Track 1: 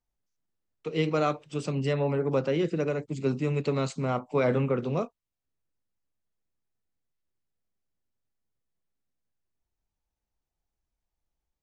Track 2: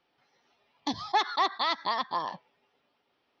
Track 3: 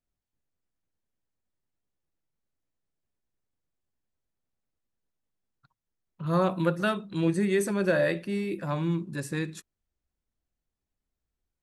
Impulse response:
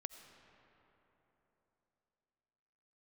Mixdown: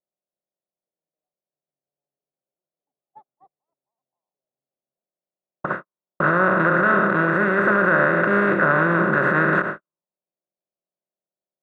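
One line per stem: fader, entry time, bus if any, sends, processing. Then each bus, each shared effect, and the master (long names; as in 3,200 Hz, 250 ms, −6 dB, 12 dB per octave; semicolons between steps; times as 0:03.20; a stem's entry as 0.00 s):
−19.0 dB, 0.00 s, no send, soft clipping −28.5 dBFS, distortion −9 dB
−13.5 dB, 2.00 s, no send, no processing
+1.5 dB, 0.00 s, send −17.5 dB, compressor on every frequency bin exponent 0.2; noise gate with hold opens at −18 dBFS; brickwall limiter −15 dBFS, peak gain reduction 9 dB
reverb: on, RT60 3.7 s, pre-delay 45 ms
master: noise gate −33 dBFS, range −52 dB; envelope-controlled low-pass 750–1,500 Hz up, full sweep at −26 dBFS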